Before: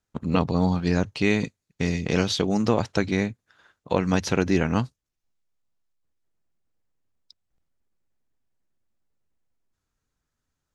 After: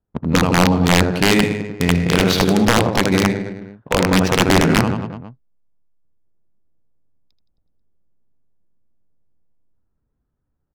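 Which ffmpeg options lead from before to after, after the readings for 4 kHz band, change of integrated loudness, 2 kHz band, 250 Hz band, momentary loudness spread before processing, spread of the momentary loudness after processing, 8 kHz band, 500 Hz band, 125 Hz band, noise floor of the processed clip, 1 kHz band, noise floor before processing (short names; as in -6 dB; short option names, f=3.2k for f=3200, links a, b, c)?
+12.5 dB, +8.0 dB, +11.0 dB, +7.5 dB, 5 LU, 11 LU, +12.5 dB, +7.5 dB, +8.0 dB, -73 dBFS, +11.0 dB, -83 dBFS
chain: -af "aecho=1:1:80|168|264.8|371.3|488.4:0.631|0.398|0.251|0.158|0.1,aeval=exprs='(mod(3.35*val(0)+1,2)-1)/3.35':c=same,adynamicsmooth=sensitivity=4.5:basefreq=800,volume=6.5dB"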